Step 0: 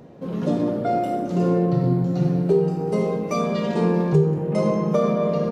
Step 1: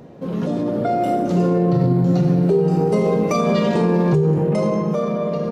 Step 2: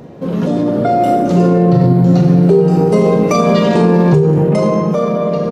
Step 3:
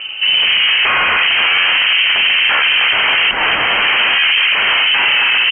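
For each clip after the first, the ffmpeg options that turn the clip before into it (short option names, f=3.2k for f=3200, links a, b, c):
-af "alimiter=limit=-17.5dB:level=0:latency=1:release=71,dynaudnorm=f=230:g=9:m=5dB,volume=3.5dB"
-filter_complex "[0:a]asplit=2[a][b];[b]adelay=41,volume=-12dB[c];[a][c]amix=inputs=2:normalize=0,volume=6.5dB"
-af "crystalizer=i=4.5:c=0,aeval=exprs='1.19*sin(PI/2*6.31*val(0)/1.19)':c=same,lowpass=f=2.7k:t=q:w=0.5098,lowpass=f=2.7k:t=q:w=0.6013,lowpass=f=2.7k:t=q:w=0.9,lowpass=f=2.7k:t=q:w=2.563,afreqshift=-3200,volume=-11dB"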